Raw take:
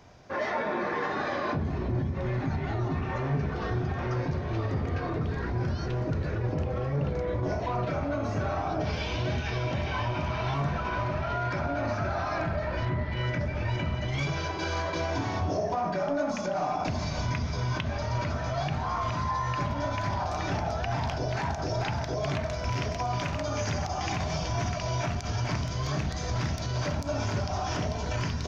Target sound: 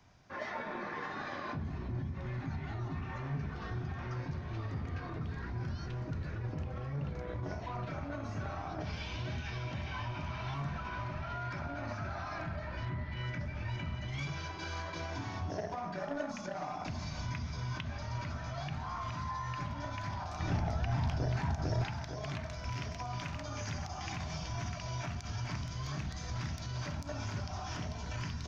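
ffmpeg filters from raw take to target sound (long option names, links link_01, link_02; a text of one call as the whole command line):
ffmpeg -i in.wav -filter_complex "[0:a]asettb=1/sr,asplit=3[link_01][link_02][link_03];[link_01]atrim=end=20.404[link_04];[link_02]atrim=start=20.4:end=21.86,asetpts=PTS-STARTPTS,afade=type=in:duration=0.004:curve=qsin,afade=type=out:start_time=1.456:duration=0.004:curve=qsin,lowshelf=frequency=410:gain=8.5[link_05];[link_03]atrim=start=21.856[link_06];[link_04][link_05]acrossfade=duration=0.004:curve1=hsin:curve2=qsin[link_07];[link_07][link_06]acrossfade=duration=0.004:curve1=qsin:curve2=hsin,acrossover=split=360|660[link_08][link_09][link_10];[link_09]acrusher=bits=4:mix=0:aa=0.5[link_11];[link_08][link_11][link_10]amix=inputs=3:normalize=0,volume=-8dB" out.wav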